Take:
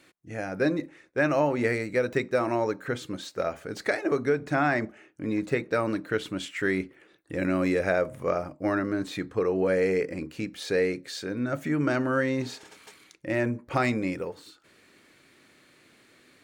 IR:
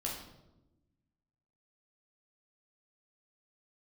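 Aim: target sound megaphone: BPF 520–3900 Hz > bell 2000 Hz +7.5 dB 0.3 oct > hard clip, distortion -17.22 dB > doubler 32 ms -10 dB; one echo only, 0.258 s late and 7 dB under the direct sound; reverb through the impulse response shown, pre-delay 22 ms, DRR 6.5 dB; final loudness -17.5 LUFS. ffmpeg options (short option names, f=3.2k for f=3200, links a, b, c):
-filter_complex "[0:a]aecho=1:1:258:0.447,asplit=2[a][b];[1:a]atrim=start_sample=2205,adelay=22[c];[b][c]afir=irnorm=-1:irlink=0,volume=-8.5dB[d];[a][d]amix=inputs=2:normalize=0,highpass=520,lowpass=3.9k,equalizer=f=2k:t=o:w=0.3:g=7.5,asoftclip=type=hard:threshold=-19.5dB,asplit=2[e][f];[f]adelay=32,volume=-10dB[g];[e][g]amix=inputs=2:normalize=0,volume=11dB"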